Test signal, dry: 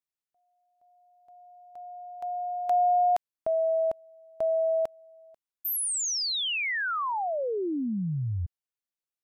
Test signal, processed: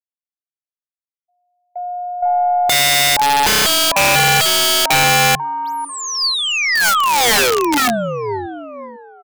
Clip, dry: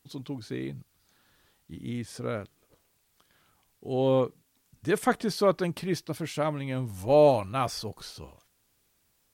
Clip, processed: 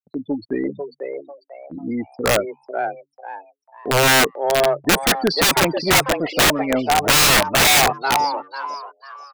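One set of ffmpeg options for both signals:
ffmpeg -i in.wav -filter_complex "[0:a]afftfilt=real='re*gte(hypot(re,im),0.0224)':imag='im*gte(hypot(re,im),0.0224)':win_size=1024:overlap=0.75,agate=range=-32dB:threshold=-47dB:ratio=16:release=138:detection=rms,asplit=2[link_01][link_02];[link_02]highpass=frequency=720:poles=1,volume=16dB,asoftclip=type=tanh:threshold=-10dB[link_03];[link_01][link_03]amix=inputs=2:normalize=0,lowpass=frequency=1600:poles=1,volume=-6dB,highpass=130,equalizer=frequency=130:width_type=q:width=4:gain=-7,equalizer=frequency=270:width_type=q:width=4:gain=5,equalizer=frequency=620:width_type=q:width=4:gain=8,equalizer=frequency=1500:width_type=q:width=4:gain=3,equalizer=frequency=4600:width_type=q:width=4:gain=7,lowpass=frequency=8400:width=0.5412,lowpass=frequency=8400:width=1.3066,aeval=exprs='0.631*(cos(1*acos(clip(val(0)/0.631,-1,1)))-cos(1*PI/2))+0.0251*(cos(4*acos(clip(val(0)/0.631,-1,1)))-cos(4*PI/2))':channel_layout=same,asplit=5[link_04][link_05][link_06][link_07][link_08];[link_05]adelay=495,afreqshift=140,volume=-6dB[link_09];[link_06]adelay=990,afreqshift=280,volume=-16.2dB[link_10];[link_07]adelay=1485,afreqshift=420,volume=-26.3dB[link_11];[link_08]adelay=1980,afreqshift=560,volume=-36.5dB[link_12];[link_04][link_09][link_10][link_11][link_12]amix=inputs=5:normalize=0,aeval=exprs='(mod(5.96*val(0)+1,2)-1)/5.96':channel_layout=same,volume=6.5dB" out.wav

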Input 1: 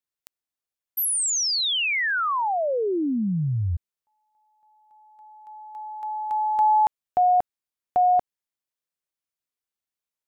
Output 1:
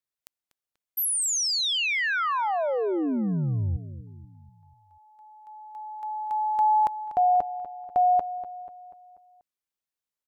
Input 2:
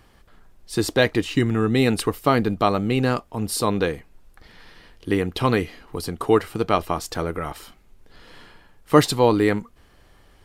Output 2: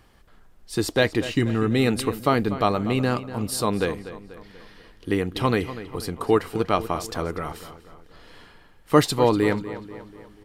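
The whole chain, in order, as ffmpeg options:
ffmpeg -i in.wav -filter_complex "[0:a]asplit=2[link_01][link_02];[link_02]adelay=243,lowpass=frequency=4500:poles=1,volume=-13.5dB,asplit=2[link_03][link_04];[link_04]adelay=243,lowpass=frequency=4500:poles=1,volume=0.51,asplit=2[link_05][link_06];[link_06]adelay=243,lowpass=frequency=4500:poles=1,volume=0.51,asplit=2[link_07][link_08];[link_08]adelay=243,lowpass=frequency=4500:poles=1,volume=0.51,asplit=2[link_09][link_10];[link_10]adelay=243,lowpass=frequency=4500:poles=1,volume=0.51[link_11];[link_01][link_03][link_05][link_07][link_09][link_11]amix=inputs=6:normalize=0,volume=-2dB" out.wav

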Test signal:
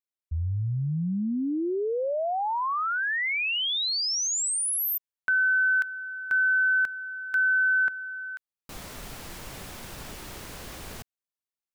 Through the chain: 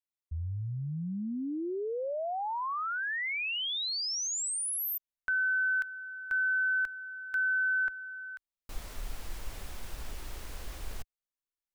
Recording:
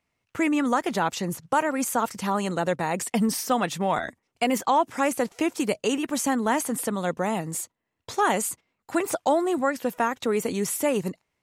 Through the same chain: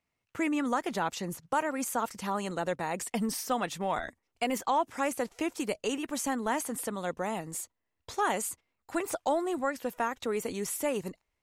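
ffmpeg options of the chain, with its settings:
ffmpeg -i in.wav -af "asubboost=boost=7:cutoff=52,volume=-6dB" out.wav

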